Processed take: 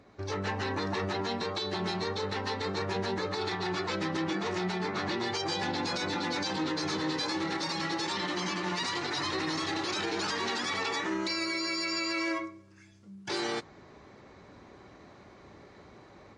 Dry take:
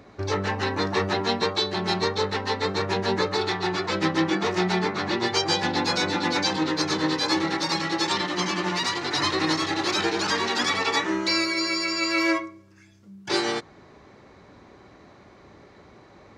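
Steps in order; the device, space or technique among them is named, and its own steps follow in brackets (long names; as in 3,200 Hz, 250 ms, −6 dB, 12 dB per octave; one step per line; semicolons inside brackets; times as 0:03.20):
low-bitrate web radio (automatic gain control gain up to 6 dB; brickwall limiter −15 dBFS, peak gain reduction 10.5 dB; level −8 dB; MP3 48 kbit/s 24,000 Hz)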